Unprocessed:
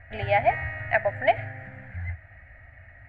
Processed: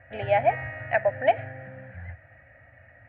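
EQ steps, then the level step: speaker cabinet 110–3400 Hz, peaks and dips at 130 Hz +5 dB, 290 Hz +4 dB, 530 Hz +10 dB; notch 2100 Hz, Q 10; -2.0 dB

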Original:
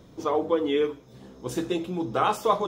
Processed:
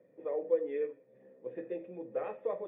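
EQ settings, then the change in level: vocal tract filter e; HPF 140 Hz 24 dB/oct; air absorption 180 m; 0.0 dB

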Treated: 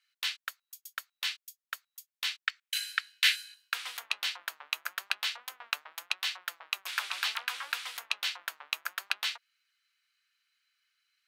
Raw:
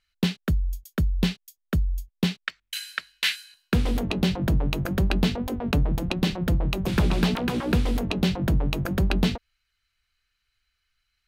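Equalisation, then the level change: HPF 1200 Hz 24 dB/oct; 0.0 dB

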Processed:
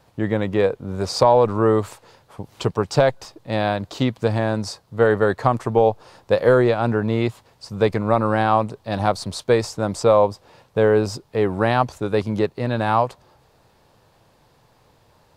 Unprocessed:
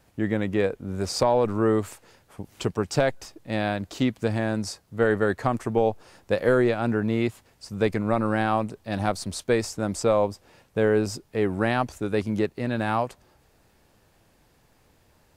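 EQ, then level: graphic EQ 125/500/1000/4000 Hz +8/+6/+9/+7 dB; -1.5 dB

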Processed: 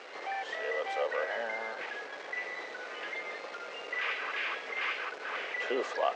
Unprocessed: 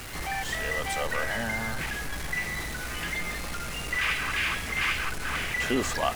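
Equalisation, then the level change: ladder high-pass 410 Hz, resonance 50%; LPF 8100 Hz 24 dB/oct; air absorption 170 m; +4.5 dB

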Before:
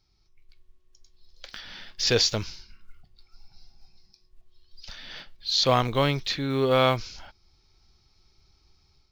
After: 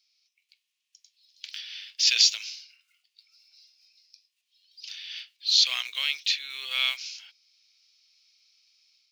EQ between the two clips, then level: resonant high-pass 2600 Hz, resonance Q 3.1; high shelf 4600 Hz +6.5 dB; bell 6600 Hz +5 dB 1.6 oct; -6.0 dB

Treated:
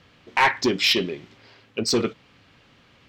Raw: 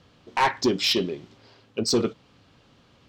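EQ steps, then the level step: bell 2100 Hz +8.5 dB 1.1 oct; bell 13000 Hz +3.5 dB 0.37 oct; 0.0 dB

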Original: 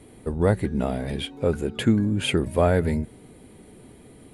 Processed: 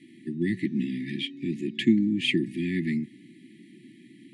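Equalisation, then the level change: Bessel high-pass 250 Hz, order 8; brick-wall FIR band-stop 370–1700 Hz; Bessel low-pass 3200 Hz, order 2; +3.5 dB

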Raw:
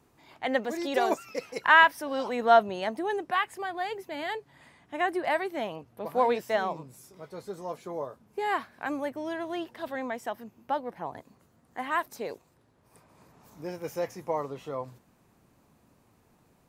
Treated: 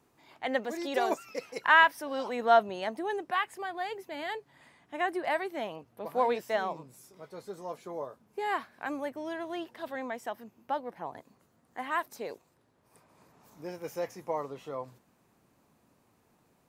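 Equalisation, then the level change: low shelf 110 Hz -8.5 dB; -2.5 dB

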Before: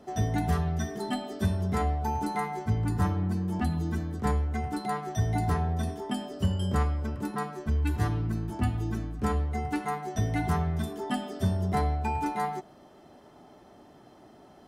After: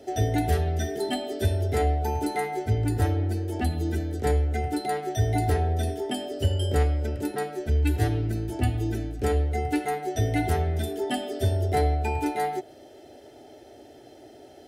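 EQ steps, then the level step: HPF 68 Hz; dynamic EQ 6100 Hz, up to -5 dB, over -59 dBFS, Q 1.4; fixed phaser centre 450 Hz, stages 4; +8.5 dB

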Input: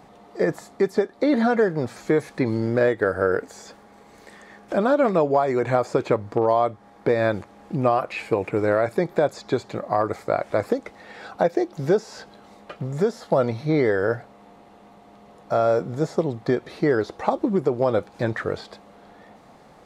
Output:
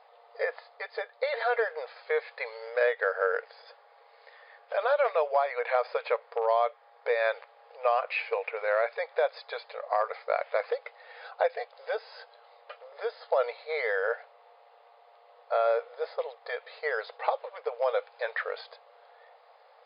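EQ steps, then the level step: dynamic EQ 2400 Hz, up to +7 dB, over -42 dBFS, Q 1; brick-wall FIR band-pass 440–5100 Hz; -6.0 dB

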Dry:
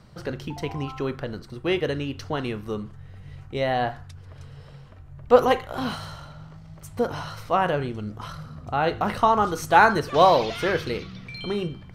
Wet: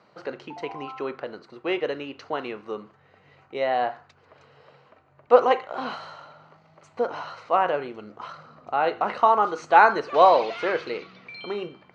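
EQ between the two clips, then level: air absorption 82 m; speaker cabinet 430–6300 Hz, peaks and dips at 1700 Hz -4 dB, 3400 Hz -8 dB, 5400 Hz -9 dB; +2.0 dB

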